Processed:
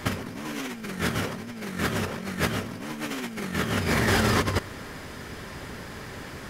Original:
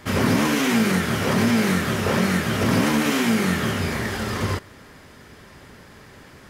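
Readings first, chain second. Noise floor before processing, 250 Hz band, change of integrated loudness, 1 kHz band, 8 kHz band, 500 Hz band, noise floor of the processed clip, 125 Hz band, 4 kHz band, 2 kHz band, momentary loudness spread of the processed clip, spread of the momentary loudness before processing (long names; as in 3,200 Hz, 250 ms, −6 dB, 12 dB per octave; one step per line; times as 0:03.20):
−47 dBFS, −9.5 dB, −7.5 dB, −5.0 dB, −5.5 dB, −6.0 dB, −40 dBFS, −5.5 dB, −5.0 dB, −4.5 dB, 16 LU, 6 LU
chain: compressor whose output falls as the input rises −27 dBFS, ratio −0.5
background noise brown −58 dBFS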